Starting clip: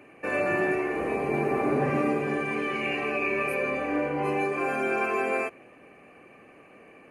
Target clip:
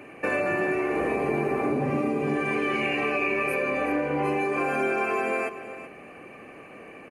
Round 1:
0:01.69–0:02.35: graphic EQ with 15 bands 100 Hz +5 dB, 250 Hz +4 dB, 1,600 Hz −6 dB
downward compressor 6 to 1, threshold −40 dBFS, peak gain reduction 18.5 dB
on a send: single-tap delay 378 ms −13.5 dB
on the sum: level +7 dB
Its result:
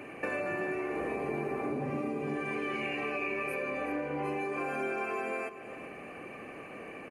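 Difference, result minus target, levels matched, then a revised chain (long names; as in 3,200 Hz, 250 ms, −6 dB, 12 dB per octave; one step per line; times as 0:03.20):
downward compressor: peak gain reduction +8.5 dB
0:01.69–0:02.35: graphic EQ with 15 bands 100 Hz +5 dB, 250 Hz +4 dB, 1,600 Hz −6 dB
downward compressor 6 to 1, threshold −30 dBFS, peak gain reduction 10 dB
on a send: single-tap delay 378 ms −13.5 dB
on the sum: level +7 dB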